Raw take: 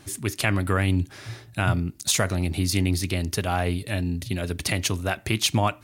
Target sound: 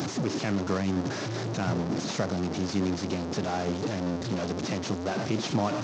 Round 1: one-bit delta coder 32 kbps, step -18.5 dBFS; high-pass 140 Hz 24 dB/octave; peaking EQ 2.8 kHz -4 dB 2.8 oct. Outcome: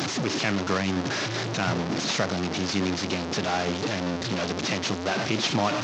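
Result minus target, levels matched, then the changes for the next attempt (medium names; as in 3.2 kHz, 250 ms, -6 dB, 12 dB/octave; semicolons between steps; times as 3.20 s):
2 kHz band +5.5 dB
change: peaking EQ 2.8 kHz -14.5 dB 2.8 oct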